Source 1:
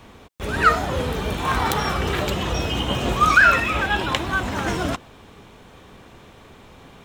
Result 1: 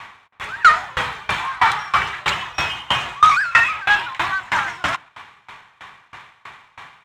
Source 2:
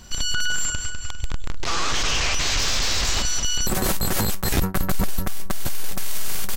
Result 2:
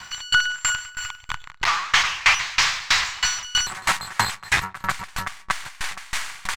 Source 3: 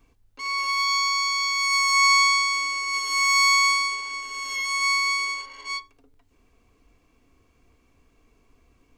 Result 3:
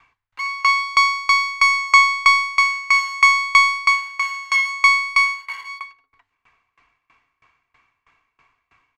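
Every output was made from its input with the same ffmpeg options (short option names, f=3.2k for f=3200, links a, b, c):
-filter_complex "[0:a]asplit=2[a][b];[b]highpass=f=720:p=1,volume=21dB,asoftclip=type=tanh:threshold=-2.5dB[c];[a][c]amix=inputs=2:normalize=0,lowpass=f=2.8k:p=1,volume=-6dB,equalizer=f=125:t=o:w=1:g=7,equalizer=f=250:t=o:w=1:g=-8,equalizer=f=500:t=o:w=1:g=-9,equalizer=f=1k:t=o:w=1:g=9,equalizer=f=2k:t=o:w=1:g=10,equalizer=f=4k:t=o:w=1:g=3,equalizer=f=8k:t=o:w=1:g=8,adynamicsmooth=sensitivity=6.5:basefreq=4.6k,asplit=2[d][e];[e]adelay=133,lowpass=f=2k:p=1,volume=-18.5dB,asplit=2[f][g];[g]adelay=133,lowpass=f=2k:p=1,volume=0.36,asplit=2[h][i];[i]adelay=133,lowpass=f=2k:p=1,volume=0.36[j];[f][h][j]amix=inputs=3:normalize=0[k];[d][k]amix=inputs=2:normalize=0,aeval=exprs='val(0)*pow(10,-25*if(lt(mod(3.1*n/s,1),2*abs(3.1)/1000),1-mod(3.1*n/s,1)/(2*abs(3.1)/1000),(mod(3.1*n/s,1)-2*abs(3.1)/1000)/(1-2*abs(3.1)/1000))/20)':c=same,volume=-6dB"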